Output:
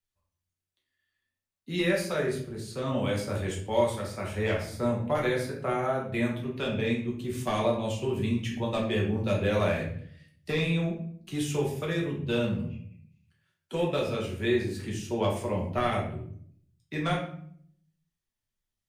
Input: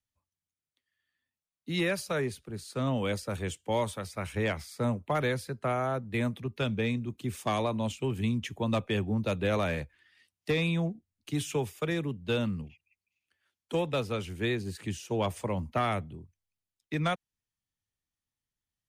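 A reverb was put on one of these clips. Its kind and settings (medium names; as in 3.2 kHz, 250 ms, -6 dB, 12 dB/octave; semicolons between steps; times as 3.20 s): simulated room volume 89 m³, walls mixed, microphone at 1.1 m; trim -3 dB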